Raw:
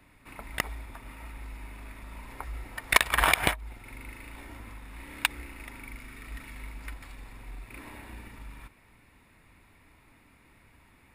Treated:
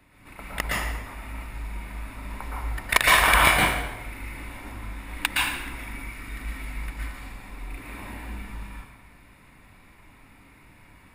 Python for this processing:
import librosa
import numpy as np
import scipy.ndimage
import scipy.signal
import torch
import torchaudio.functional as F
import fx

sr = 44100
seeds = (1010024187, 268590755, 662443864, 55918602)

y = fx.rev_plate(x, sr, seeds[0], rt60_s=0.99, hf_ratio=0.8, predelay_ms=105, drr_db=-5.5)